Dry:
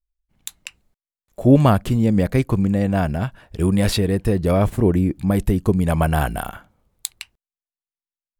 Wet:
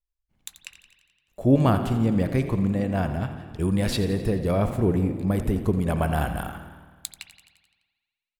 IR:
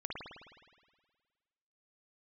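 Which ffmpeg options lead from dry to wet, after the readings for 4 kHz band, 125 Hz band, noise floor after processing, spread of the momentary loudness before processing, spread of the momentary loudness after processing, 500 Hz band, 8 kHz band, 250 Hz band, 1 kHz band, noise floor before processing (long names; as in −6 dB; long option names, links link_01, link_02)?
−5.5 dB, −5.0 dB, below −85 dBFS, 16 LU, 17 LU, −5.0 dB, −7.0 dB, −5.0 dB, −5.0 dB, below −85 dBFS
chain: -filter_complex "[0:a]asplit=8[link_01][link_02][link_03][link_04][link_05][link_06][link_07][link_08];[link_02]adelay=86,afreqshift=31,volume=-13.5dB[link_09];[link_03]adelay=172,afreqshift=62,volume=-17.7dB[link_10];[link_04]adelay=258,afreqshift=93,volume=-21.8dB[link_11];[link_05]adelay=344,afreqshift=124,volume=-26dB[link_12];[link_06]adelay=430,afreqshift=155,volume=-30.1dB[link_13];[link_07]adelay=516,afreqshift=186,volume=-34.3dB[link_14];[link_08]adelay=602,afreqshift=217,volume=-38.4dB[link_15];[link_01][link_09][link_10][link_11][link_12][link_13][link_14][link_15]amix=inputs=8:normalize=0,asplit=2[link_16][link_17];[1:a]atrim=start_sample=2205,lowpass=8700[link_18];[link_17][link_18]afir=irnorm=-1:irlink=0,volume=-9dB[link_19];[link_16][link_19]amix=inputs=2:normalize=0,volume=-7.5dB"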